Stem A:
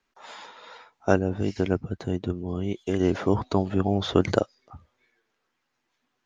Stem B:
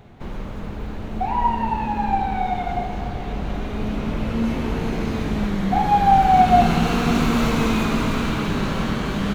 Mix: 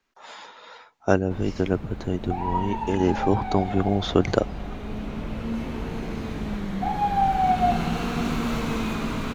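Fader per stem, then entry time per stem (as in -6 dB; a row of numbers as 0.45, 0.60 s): +1.0, -7.0 dB; 0.00, 1.10 s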